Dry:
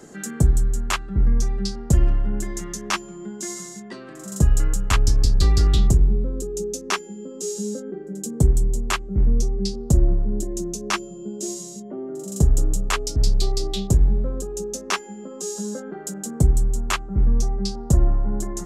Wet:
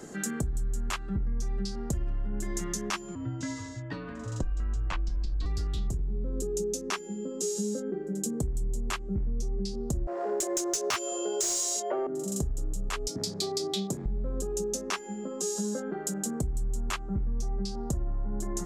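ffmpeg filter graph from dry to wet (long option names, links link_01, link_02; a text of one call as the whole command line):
ffmpeg -i in.wav -filter_complex "[0:a]asettb=1/sr,asplit=3[link_01][link_02][link_03];[link_01]atrim=end=3.154[link_04];[link_02]atrim=start=3.15:end=5.46,asetpts=PTS-STARTPTS,afade=type=in:duration=0.004:curve=qsin,afade=type=out:start_time=2.306:duration=0.004:curve=qsin,lowpass=3500,afreqshift=-83[link_05];[link_03]atrim=start=5.456[link_06];[link_04][link_05]acrossfade=duration=0.004:curve1=hsin:curve2=qsin[link_07];[link_07][link_06]acrossfade=duration=0.004:curve1=qsin:curve2=hsin,asettb=1/sr,asplit=3[link_08][link_09][link_10];[link_08]atrim=end=10.074[link_11];[link_09]atrim=start=10.07:end=12.07,asetpts=PTS-STARTPTS,afade=type=in:duration=0.004:curve=qsin,afade=type=out:start_time=1.996:duration=0.004:curve=qsin,highpass=frequency=450:width=0.5412,highpass=frequency=450:width=1.3066,asplit=2[link_12][link_13];[link_13]highpass=frequency=720:poles=1,volume=25dB,asoftclip=type=tanh:threshold=-8.5dB[link_14];[link_12][link_14]amix=inputs=2:normalize=0,lowpass=frequency=7100:poles=1,volume=-6dB[link_15];[link_10]atrim=start=12.066[link_16];[link_11][link_15]acrossfade=duration=0.004:curve1=hsin:curve2=qsin[link_17];[link_17][link_16]acrossfade=duration=0.004:curve1=qsin:curve2=hsin,asettb=1/sr,asplit=3[link_18][link_19][link_20];[link_18]atrim=end=13.084[link_21];[link_19]atrim=start=13.08:end=14.06,asetpts=PTS-STARTPTS,afade=type=in:duration=0.004:curve=qsin,afade=type=out:start_time=0.976:duration=0.004:curve=qsin,highpass=frequency=160:width=0.5412,highpass=frequency=160:width=1.3066,bandreject=frequency=2800:width=10[link_22];[link_20]atrim=start=14.056[link_23];[link_21][link_22]acrossfade=duration=0.004:curve1=hsin:curve2=qsin[link_24];[link_24][link_23]acrossfade=duration=0.004:curve1=qsin:curve2=hsin,alimiter=limit=-17dB:level=0:latency=1:release=215,acompressor=threshold=-27dB:ratio=6" out.wav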